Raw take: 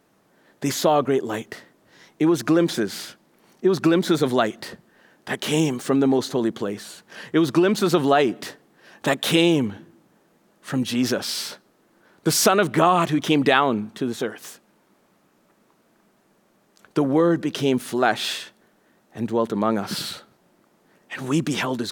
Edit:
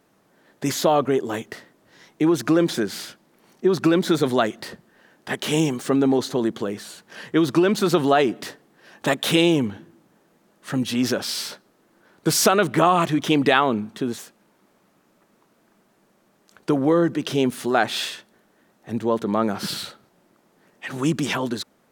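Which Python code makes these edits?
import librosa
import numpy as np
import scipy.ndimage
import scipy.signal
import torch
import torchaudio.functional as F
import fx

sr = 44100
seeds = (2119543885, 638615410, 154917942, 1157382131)

y = fx.edit(x, sr, fx.cut(start_s=14.18, length_s=0.28), tone=tone)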